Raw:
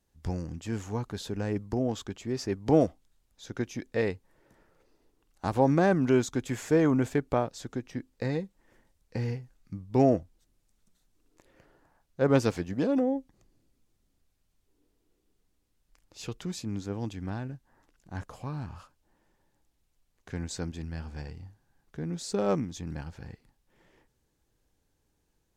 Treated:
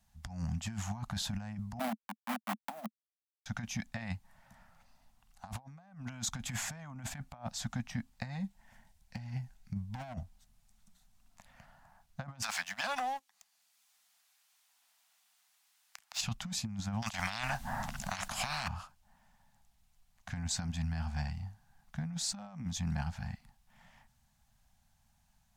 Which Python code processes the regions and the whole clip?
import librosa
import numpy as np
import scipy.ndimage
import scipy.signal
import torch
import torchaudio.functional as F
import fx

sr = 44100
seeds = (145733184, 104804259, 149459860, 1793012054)

y = fx.chain(x, sr, fx.delta_hold(step_db=-26.0),
    fx.steep_highpass(hz=220.0, slope=48),
    fx.peak_eq(hz=5700.0, db=-11.5, octaves=1.9), at=(1.79, 3.46))
y = fx.chain(y, sr, fx.clip_hard(threshold_db=-27.0),
    fx.notch(hz=1200.0, q=6.3), at=(8.42, 10.14))
y = fx.chain(y, sr, fx.highpass(hz=1200.0, slope=12),
    fx.leveller(passes=2),
    fx.band_squash(depth_pct=40), at=(12.42, 16.21))
y = fx.chain(y, sr, fx.low_shelf(hz=460.0, db=11.5),
    fx.spectral_comp(ratio=10.0), at=(17.02, 18.68))
y = scipy.signal.sosfilt(scipy.signal.cheby1(3, 1.0, [220.0, 720.0], 'bandstop', fs=sr, output='sos'), y)
y = fx.peak_eq(y, sr, hz=500.0, db=9.5, octaves=0.81)
y = fx.over_compress(y, sr, threshold_db=-37.0, ratio=-0.5)